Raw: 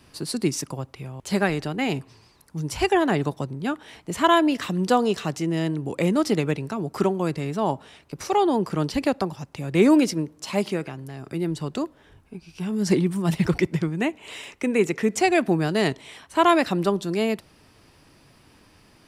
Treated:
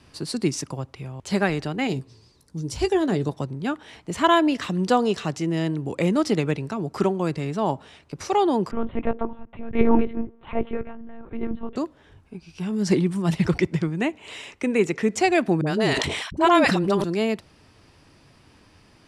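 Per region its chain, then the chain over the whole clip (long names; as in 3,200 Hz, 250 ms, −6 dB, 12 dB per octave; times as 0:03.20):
0:01.87–0:03.29: flat-topped bell 1,400 Hz −8 dB 2.4 octaves + double-tracking delay 16 ms −11.5 dB
0:08.71–0:11.76: low-pass filter 1,700 Hz + hum removal 85.52 Hz, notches 6 + one-pitch LPC vocoder at 8 kHz 230 Hz
0:15.61–0:17.04: noise gate −44 dBFS, range −58 dB + all-pass dispersion highs, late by 56 ms, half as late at 540 Hz + level that may fall only so fast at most 31 dB per second
whole clip: low-pass filter 8,700 Hz 12 dB per octave; parametric band 87 Hz +3.5 dB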